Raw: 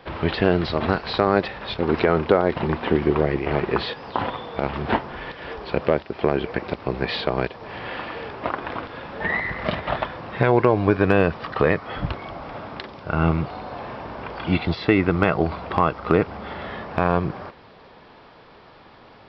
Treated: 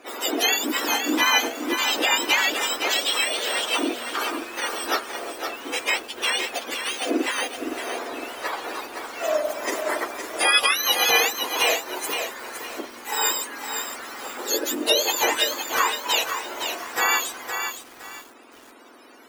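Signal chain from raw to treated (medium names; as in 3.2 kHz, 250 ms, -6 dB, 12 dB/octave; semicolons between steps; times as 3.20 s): spectrum inverted on a logarithmic axis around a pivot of 1.1 kHz; de-hum 134.7 Hz, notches 12; bit-crushed delay 513 ms, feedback 35%, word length 7-bit, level -6.5 dB; trim +2 dB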